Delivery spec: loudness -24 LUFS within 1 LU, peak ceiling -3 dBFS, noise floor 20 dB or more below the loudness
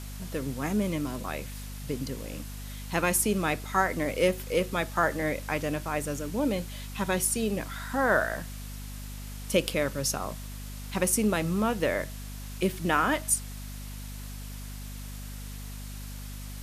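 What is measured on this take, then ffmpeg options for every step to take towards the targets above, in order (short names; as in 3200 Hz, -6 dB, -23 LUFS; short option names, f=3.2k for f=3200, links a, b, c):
hum 50 Hz; harmonics up to 250 Hz; hum level -37 dBFS; noise floor -39 dBFS; noise floor target -49 dBFS; loudness -28.5 LUFS; peak -9.0 dBFS; loudness target -24.0 LUFS
-> -af "bandreject=f=50:t=h:w=4,bandreject=f=100:t=h:w=4,bandreject=f=150:t=h:w=4,bandreject=f=200:t=h:w=4,bandreject=f=250:t=h:w=4"
-af "afftdn=nr=10:nf=-39"
-af "volume=4.5dB"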